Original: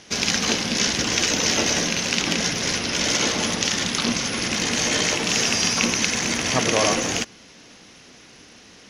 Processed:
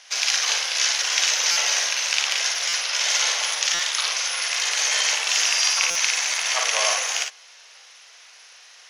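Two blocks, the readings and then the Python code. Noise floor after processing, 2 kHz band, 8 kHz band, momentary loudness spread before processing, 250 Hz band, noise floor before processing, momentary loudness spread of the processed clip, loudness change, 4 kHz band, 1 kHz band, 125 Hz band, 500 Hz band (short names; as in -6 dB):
-48 dBFS, +1.0 dB, +1.5 dB, 4 LU, under -30 dB, -48 dBFS, 4 LU, +0.5 dB, +1.5 dB, -2.0 dB, under -35 dB, -10.0 dB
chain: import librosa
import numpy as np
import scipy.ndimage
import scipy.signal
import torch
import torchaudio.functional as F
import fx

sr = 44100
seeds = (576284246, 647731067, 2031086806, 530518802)

y = scipy.signal.sosfilt(scipy.signal.bessel(8, 1000.0, 'highpass', norm='mag', fs=sr, output='sos'), x)
y = fx.room_early_taps(y, sr, ms=(42, 56), db=(-7.5, -6.0))
y = fx.buffer_glitch(y, sr, at_s=(1.51, 2.68, 3.74, 5.9), block=256, repeats=8)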